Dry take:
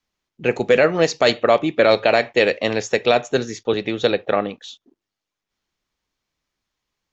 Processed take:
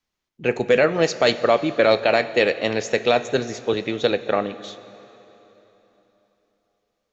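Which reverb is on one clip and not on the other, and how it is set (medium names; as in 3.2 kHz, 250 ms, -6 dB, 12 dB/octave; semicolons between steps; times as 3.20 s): plate-style reverb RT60 3.6 s, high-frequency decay 0.9×, DRR 13.5 dB; trim -2 dB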